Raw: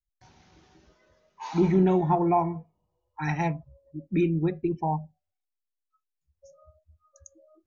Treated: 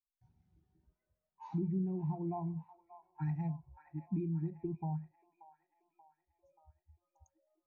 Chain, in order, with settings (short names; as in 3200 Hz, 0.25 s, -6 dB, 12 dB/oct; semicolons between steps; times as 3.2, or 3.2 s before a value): tone controls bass +10 dB, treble -2 dB; compressor 6:1, threshold -27 dBFS, peak gain reduction 15 dB; on a send: band-limited delay 0.582 s, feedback 65%, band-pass 1500 Hz, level -6.5 dB; on the sum: spectral expander 1.5:1; gain -8 dB